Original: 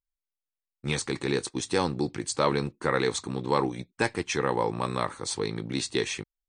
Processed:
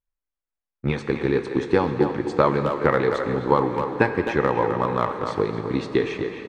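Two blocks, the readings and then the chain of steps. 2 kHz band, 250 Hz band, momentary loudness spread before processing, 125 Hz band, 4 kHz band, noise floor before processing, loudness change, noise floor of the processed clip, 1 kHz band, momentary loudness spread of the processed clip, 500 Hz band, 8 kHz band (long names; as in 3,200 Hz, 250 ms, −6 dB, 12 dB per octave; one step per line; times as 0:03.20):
+4.0 dB, +6.5 dB, 5 LU, +5.5 dB, −6.0 dB, below −85 dBFS, +6.0 dB, below −85 dBFS, +6.5 dB, 5 LU, +7.5 dB, below −15 dB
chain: low-pass filter 1,900 Hz 12 dB per octave
transient designer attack +7 dB, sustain +3 dB
far-end echo of a speakerphone 260 ms, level −7 dB
dense smooth reverb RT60 4.3 s, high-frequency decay 1×, DRR 8 dB
level +2.5 dB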